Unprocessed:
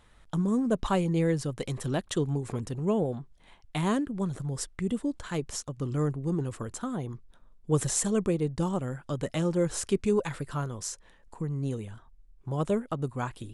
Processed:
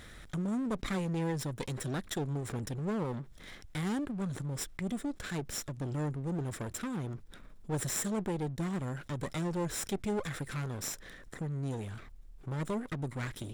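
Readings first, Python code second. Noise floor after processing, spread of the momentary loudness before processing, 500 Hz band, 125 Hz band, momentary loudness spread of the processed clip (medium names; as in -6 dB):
-52 dBFS, 10 LU, -8.5 dB, -5.0 dB, 8 LU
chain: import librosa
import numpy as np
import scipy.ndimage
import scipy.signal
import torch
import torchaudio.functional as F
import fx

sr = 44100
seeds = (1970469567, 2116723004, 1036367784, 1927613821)

y = fx.lower_of_two(x, sr, delay_ms=0.55)
y = fx.low_shelf(y, sr, hz=88.0, db=-5.5)
y = fx.env_flatten(y, sr, amount_pct=50)
y = F.gain(torch.from_numpy(y), -8.0).numpy()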